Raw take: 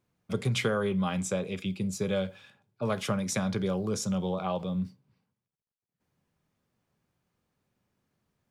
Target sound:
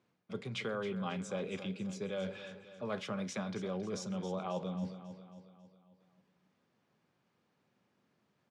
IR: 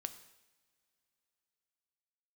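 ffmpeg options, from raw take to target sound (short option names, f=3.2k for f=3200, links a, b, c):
-af "areverse,acompressor=threshold=-38dB:ratio=6,areverse,highpass=170,lowpass=5k,aecho=1:1:272|544|816|1088|1360|1632:0.251|0.133|0.0706|0.0374|0.0198|0.0105,volume=3.5dB"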